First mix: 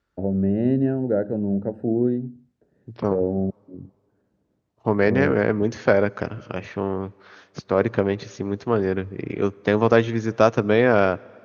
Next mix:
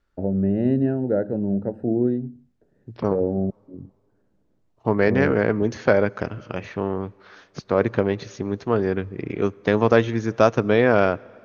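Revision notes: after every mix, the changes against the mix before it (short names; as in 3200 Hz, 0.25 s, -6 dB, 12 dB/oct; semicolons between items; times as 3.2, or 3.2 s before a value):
master: remove HPF 57 Hz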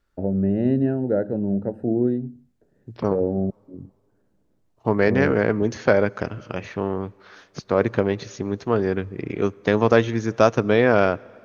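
master: remove air absorption 50 m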